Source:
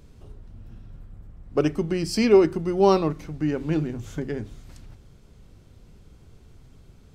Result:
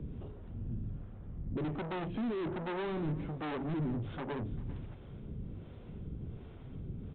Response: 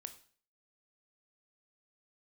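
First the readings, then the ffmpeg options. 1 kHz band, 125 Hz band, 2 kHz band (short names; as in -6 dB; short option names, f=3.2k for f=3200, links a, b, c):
-12.5 dB, -6.0 dB, -9.5 dB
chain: -filter_complex "[0:a]acrossover=split=130|2900[a][b][c];[b]alimiter=limit=-15dB:level=0:latency=1:release=27[d];[a][d][c]amix=inputs=3:normalize=0,equalizer=f=190:w=0.31:g=11,aresample=8000,asoftclip=type=tanh:threshold=-28dB,aresample=44100,acompressor=threshold=-40dB:ratio=2,acrossover=split=430[e][f];[e]aeval=exprs='val(0)*(1-0.7/2+0.7/2*cos(2*PI*1.3*n/s))':c=same[g];[f]aeval=exprs='val(0)*(1-0.7/2-0.7/2*cos(2*PI*1.3*n/s))':c=same[h];[g][h]amix=inputs=2:normalize=0,aecho=1:1:394:0.106,volume=3dB"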